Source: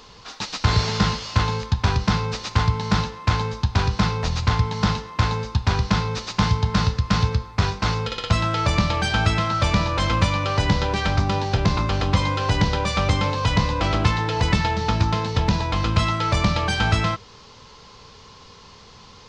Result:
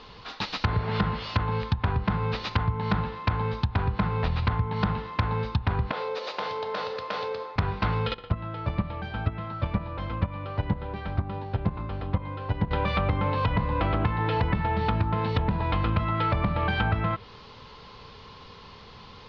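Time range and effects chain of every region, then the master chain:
0:05.91–0:07.56: high-pass with resonance 510 Hz, resonance Q 4.3 + downward compressor 4 to 1, threshold −28 dBFS
0:08.14–0:12.71: low-pass filter 1,200 Hz 6 dB per octave + noise gate −18 dBFS, range −10 dB
whole clip: treble cut that deepens with the level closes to 1,700 Hz, closed at −16.5 dBFS; low-pass filter 4,200 Hz 24 dB per octave; downward compressor, threshold −21 dBFS

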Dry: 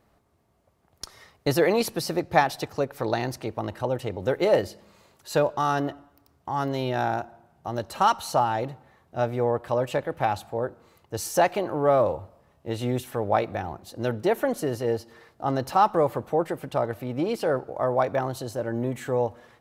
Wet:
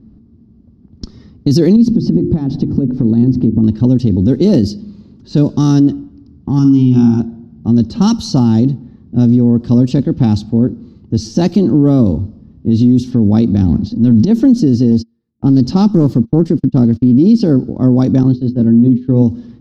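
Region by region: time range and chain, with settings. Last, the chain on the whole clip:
0:01.76–0:03.64: tilt shelving filter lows +8 dB, about 1,300 Hz + mains-hum notches 50/100/150/200/250/300/350 Hz + downward compressor, threshold −29 dBFS
0:06.59–0:07.20: high-pass filter 57 Hz + phaser with its sweep stopped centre 2,700 Hz, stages 8 + flutter between parallel walls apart 9.4 metres, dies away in 0.47 s
0:13.56–0:14.31: low-pass filter 6,800 Hz 24 dB per octave + transient designer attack −9 dB, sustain +9 dB + parametric band 370 Hz −7 dB 0.36 octaves
0:14.91–0:17.19: noise gate −40 dBFS, range −34 dB + highs frequency-modulated by the lows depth 0.28 ms
0:18.23–0:19.22: low-pass filter 4,800 Hz 24 dB per octave + downward expander −30 dBFS + mains-hum notches 50/100/150/200/250/300/350/400/450 Hz
whole clip: low-pass that shuts in the quiet parts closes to 1,900 Hz, open at −18.5 dBFS; drawn EQ curve 160 Hz 0 dB, 230 Hz +10 dB, 610 Hz −26 dB, 2,200 Hz −28 dB, 5,100 Hz −4 dB, 8,900 Hz −21 dB; boost into a limiter +24 dB; level −1 dB

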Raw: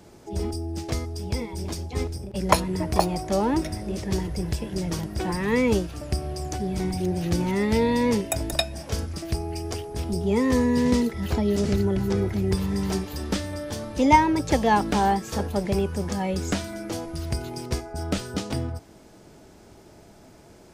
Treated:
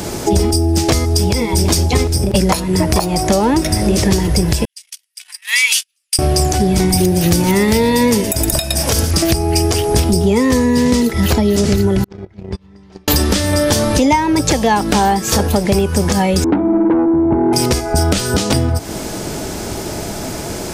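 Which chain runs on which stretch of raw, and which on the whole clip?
0:04.65–0:06.19: noise gate −24 dBFS, range −46 dB + four-pole ladder high-pass 2,100 Hz, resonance 35% + parametric band 10,000 Hz +6.5 dB 0.52 octaves
0:06.89–0:09.11: high-shelf EQ 11,000 Hz +11 dB + single-tap delay 116 ms −13.5 dB
0:12.04–0:13.08: noise gate −20 dBFS, range −42 dB + low-pass filter 3,600 Hz + downward compressor 3 to 1, threshold −49 dBFS
0:16.44–0:17.53: formant resonators in series u + mid-hump overdrive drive 25 dB, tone 2,900 Hz, clips at −21 dBFS
whole clip: downward compressor 10 to 1, threshold −36 dBFS; high-shelf EQ 4,100 Hz +7.5 dB; boost into a limiter +26.5 dB; level −1 dB

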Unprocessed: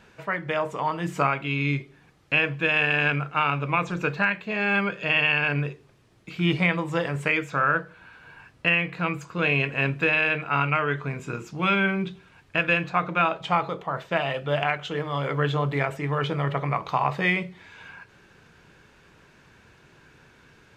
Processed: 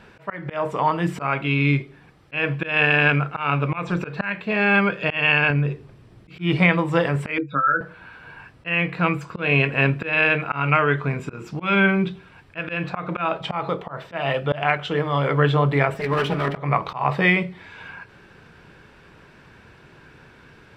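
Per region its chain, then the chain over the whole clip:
0:05.50–0:06.39: low-shelf EQ 290 Hz +8 dB + downward compressor 2.5 to 1, threshold −26 dBFS
0:07.38–0:07.81: expanding power law on the bin magnitudes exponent 2.6 + loudspeaker in its box 230–5,300 Hz, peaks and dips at 270 Hz +9 dB, 490 Hz −3 dB, 1,400 Hz −4 dB, 2,200 Hz −4 dB, 3,700 Hz +9 dB + double-tracking delay 21 ms −6.5 dB
0:15.94–0:16.57: lower of the sound and its delayed copy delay 4.8 ms + high-pass filter 53 Hz
whole clip: high-shelf EQ 3,800 Hz −6.5 dB; notch filter 6,600 Hz, Q 7.1; volume swells 182 ms; level +6.5 dB

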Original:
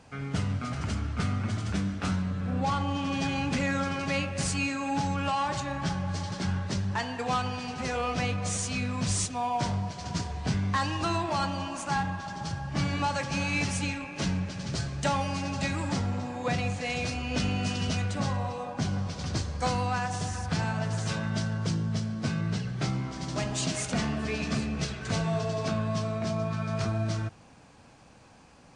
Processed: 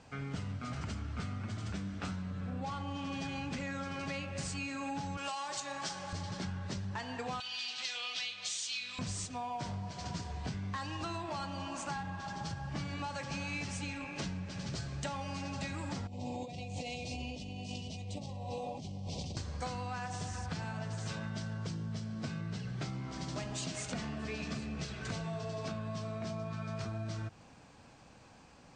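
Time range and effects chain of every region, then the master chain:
0:05.17–0:06.13: high-pass filter 180 Hz 6 dB per octave + bass and treble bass −12 dB, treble +11 dB
0:07.40–0:08.99: resonant band-pass 5,500 Hz, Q 0.65 + parametric band 3,500 Hz +14.5 dB 1.1 octaves + double-tracking delay 41 ms −12 dB
0:16.07–0:19.37: Chebyshev band-stop filter 770–2,800 Hz + compressor whose output falls as the input rises −37 dBFS
whole clip: downward compressor, threshold −33 dBFS; elliptic low-pass filter 8,500 Hz, stop band 40 dB; level −2 dB

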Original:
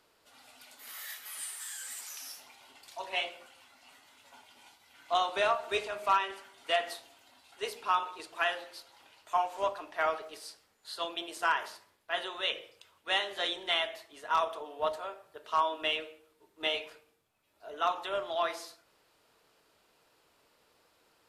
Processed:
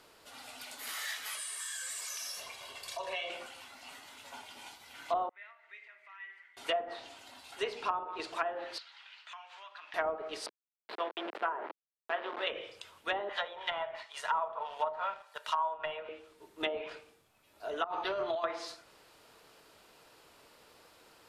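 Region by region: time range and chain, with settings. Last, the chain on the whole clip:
0:01.35–0:03.30: downward compressor 3 to 1, threshold −46 dBFS + comb filter 1.8 ms, depth 68%
0:05.29–0:06.57: downward compressor 2 to 1, threshold −47 dBFS + resonant band-pass 2,000 Hz, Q 13
0:08.78–0:09.94: downward compressor 4 to 1, threshold −46 dBFS + flat-topped band-pass 2,400 Hz, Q 0.87
0:10.46–0:12.47: hold until the input has moved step −35 dBFS + high-pass filter 360 Hz 24 dB per octave + high-frequency loss of the air 460 metres
0:13.29–0:16.09: inverse Chebyshev high-pass filter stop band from 160 Hz, stop band 70 dB + comb filter 2.1 ms, depth 34% + leveller curve on the samples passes 1
0:17.84–0:18.44: compressor whose output falls as the input rises −36 dBFS + notch comb filter 270 Hz + linearly interpolated sample-rate reduction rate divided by 6×
whole clip: treble cut that deepens with the level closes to 740 Hz, closed at −27 dBFS; downward compressor 2 to 1, threshold −43 dBFS; level +8 dB

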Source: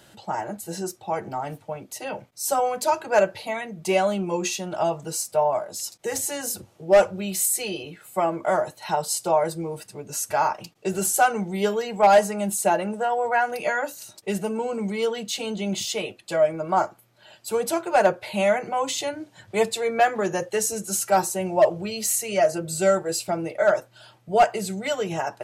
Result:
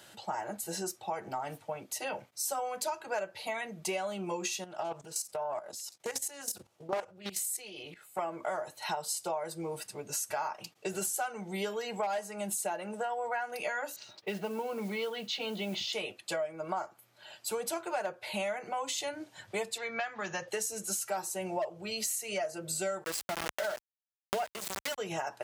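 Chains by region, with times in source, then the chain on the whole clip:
0:04.64–0:08.19: output level in coarse steps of 14 dB + highs frequency-modulated by the lows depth 0.54 ms
0:13.96–0:15.93: low-pass filter 4,600 Hz 24 dB per octave + noise that follows the level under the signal 27 dB
0:19.78–0:20.48: low-pass filter 5,700 Hz 24 dB per octave + parametric band 410 Hz −12 dB 1.7 octaves + multiband upward and downward compressor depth 40%
0:23.04–0:24.98: centre clipping without the shift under −24.5 dBFS + background raised ahead of every attack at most 37 dB per second
whole clip: high-pass filter 46 Hz; low-shelf EQ 430 Hz −9.5 dB; downward compressor 6 to 1, threshold −32 dBFS

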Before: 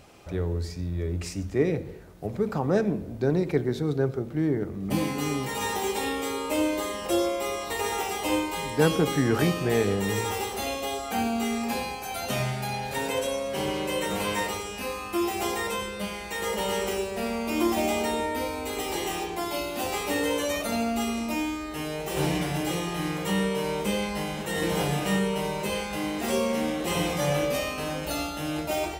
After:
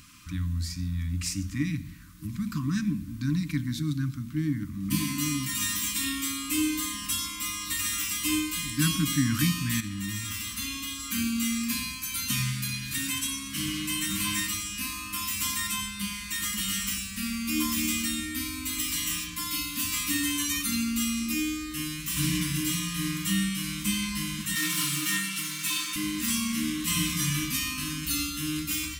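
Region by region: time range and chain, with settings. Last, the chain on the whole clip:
0:09.80–0:11.00: high-shelf EQ 4,900 Hz −5 dB + downward compressor 5 to 1, threshold −27 dBFS + Butterworth band-reject 700 Hz, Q 1.5
0:24.55–0:25.96: lower of the sound and its delayed copy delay 6.6 ms + high-pass filter 180 Hz 24 dB per octave + comb filter 2.2 ms, depth 93%
whole clip: dynamic equaliser 1,300 Hz, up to −7 dB, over −48 dBFS, Q 1.5; brick-wall band-stop 320–990 Hz; high-shelf EQ 4,100 Hz +9.5 dB

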